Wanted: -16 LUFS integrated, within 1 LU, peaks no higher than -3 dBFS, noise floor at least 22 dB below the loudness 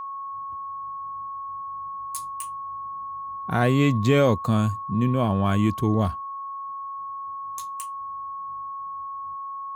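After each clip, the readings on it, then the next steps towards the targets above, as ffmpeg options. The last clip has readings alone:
steady tone 1.1 kHz; tone level -31 dBFS; loudness -26.5 LUFS; peak level -7.0 dBFS; loudness target -16.0 LUFS
-> -af "bandreject=f=1100:w=30"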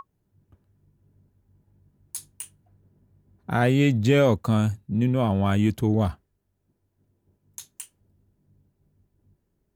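steady tone not found; loudness -22.5 LUFS; peak level -8.0 dBFS; loudness target -16.0 LUFS
-> -af "volume=2.11,alimiter=limit=0.708:level=0:latency=1"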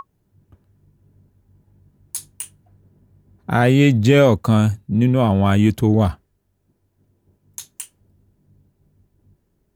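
loudness -16.5 LUFS; peak level -3.0 dBFS; noise floor -68 dBFS

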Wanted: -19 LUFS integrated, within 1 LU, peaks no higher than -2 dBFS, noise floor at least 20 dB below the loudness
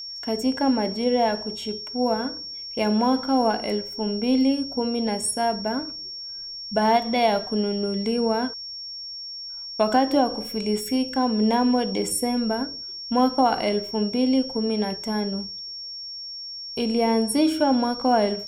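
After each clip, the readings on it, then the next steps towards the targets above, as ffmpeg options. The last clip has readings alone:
steady tone 5.5 kHz; tone level -33 dBFS; loudness -24.0 LUFS; peak level -7.0 dBFS; loudness target -19.0 LUFS
-> -af "bandreject=f=5500:w=30"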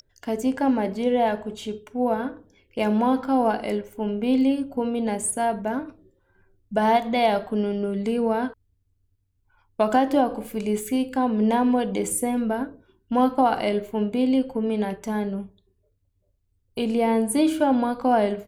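steady tone not found; loudness -24.0 LUFS; peak level -7.5 dBFS; loudness target -19.0 LUFS
-> -af "volume=1.78"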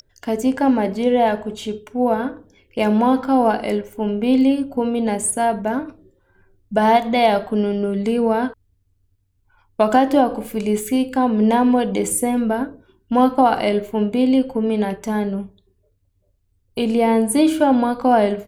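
loudness -19.0 LUFS; peak level -2.5 dBFS; noise floor -64 dBFS

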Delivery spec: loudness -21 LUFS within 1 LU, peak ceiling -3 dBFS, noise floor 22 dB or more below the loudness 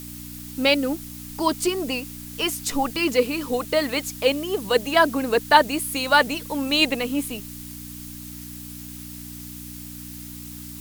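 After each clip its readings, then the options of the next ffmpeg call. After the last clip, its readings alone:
hum 60 Hz; highest harmonic 300 Hz; hum level -37 dBFS; noise floor -38 dBFS; noise floor target -44 dBFS; loudness -22.0 LUFS; peak level -2.0 dBFS; loudness target -21.0 LUFS
-> -af "bandreject=f=60:t=h:w=4,bandreject=f=120:t=h:w=4,bandreject=f=180:t=h:w=4,bandreject=f=240:t=h:w=4,bandreject=f=300:t=h:w=4"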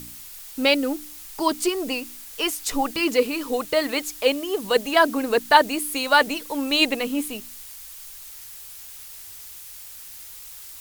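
hum not found; noise floor -41 dBFS; noise floor target -44 dBFS
-> -af "afftdn=nr=6:nf=-41"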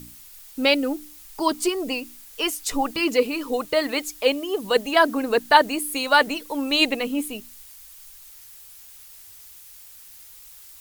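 noise floor -46 dBFS; loudness -22.5 LUFS; peak level -2.0 dBFS; loudness target -21.0 LUFS
-> -af "volume=1.19,alimiter=limit=0.708:level=0:latency=1"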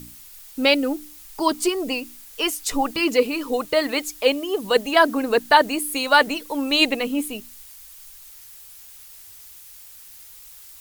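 loudness -21.0 LUFS; peak level -3.0 dBFS; noise floor -44 dBFS

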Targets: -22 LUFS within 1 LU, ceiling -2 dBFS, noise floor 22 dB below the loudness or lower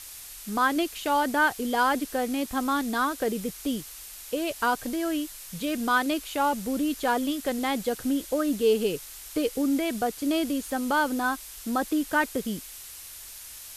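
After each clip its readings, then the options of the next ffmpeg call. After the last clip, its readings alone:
noise floor -43 dBFS; noise floor target -49 dBFS; loudness -27.0 LUFS; peak level -12.0 dBFS; loudness target -22.0 LUFS
-> -af "afftdn=nr=6:nf=-43"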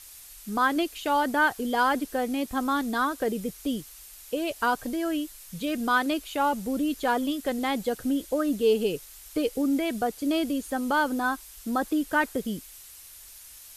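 noise floor -48 dBFS; noise floor target -50 dBFS
-> -af "afftdn=nr=6:nf=-48"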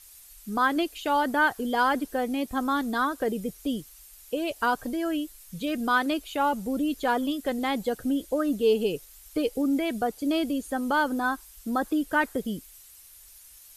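noise floor -51 dBFS; loudness -27.5 LUFS; peak level -12.0 dBFS; loudness target -22.0 LUFS
-> -af "volume=1.88"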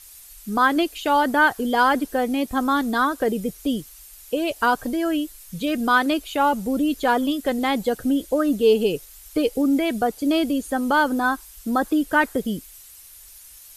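loudness -22.0 LUFS; peak level -6.5 dBFS; noise floor -46 dBFS

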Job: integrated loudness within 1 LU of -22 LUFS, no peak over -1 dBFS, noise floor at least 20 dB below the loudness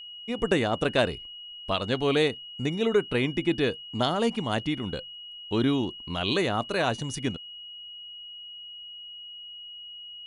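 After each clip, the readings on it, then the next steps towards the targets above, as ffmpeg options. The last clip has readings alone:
steady tone 2.9 kHz; tone level -40 dBFS; loudness -27.5 LUFS; peak level -10.0 dBFS; loudness target -22.0 LUFS
-> -af "bandreject=f=2900:w=30"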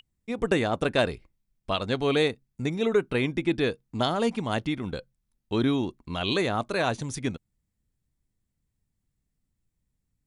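steady tone not found; loudness -27.5 LUFS; peak level -10.5 dBFS; loudness target -22.0 LUFS
-> -af "volume=1.88"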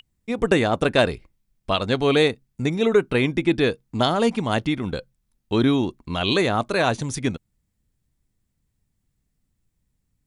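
loudness -22.0 LUFS; peak level -5.0 dBFS; noise floor -75 dBFS

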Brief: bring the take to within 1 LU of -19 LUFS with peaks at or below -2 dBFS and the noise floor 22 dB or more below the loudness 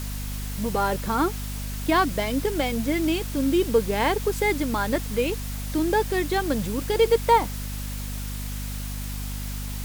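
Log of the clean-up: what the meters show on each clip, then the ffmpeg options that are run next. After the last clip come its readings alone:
hum 50 Hz; highest harmonic 250 Hz; hum level -29 dBFS; noise floor -32 dBFS; noise floor target -48 dBFS; loudness -25.5 LUFS; peak level -7.0 dBFS; loudness target -19.0 LUFS
-> -af "bandreject=f=50:t=h:w=4,bandreject=f=100:t=h:w=4,bandreject=f=150:t=h:w=4,bandreject=f=200:t=h:w=4,bandreject=f=250:t=h:w=4"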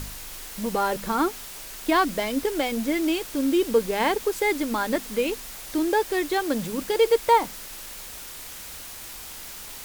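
hum not found; noise floor -40 dBFS; noise floor target -47 dBFS
-> -af "afftdn=nr=7:nf=-40"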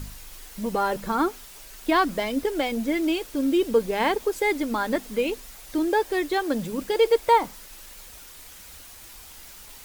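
noise floor -45 dBFS; noise floor target -47 dBFS
-> -af "afftdn=nr=6:nf=-45"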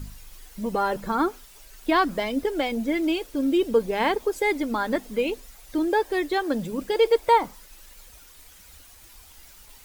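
noise floor -50 dBFS; loudness -24.5 LUFS; peak level -8.5 dBFS; loudness target -19.0 LUFS
-> -af "volume=1.88"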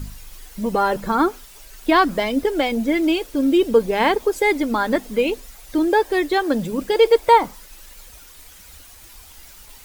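loudness -19.0 LUFS; peak level -3.0 dBFS; noise floor -45 dBFS

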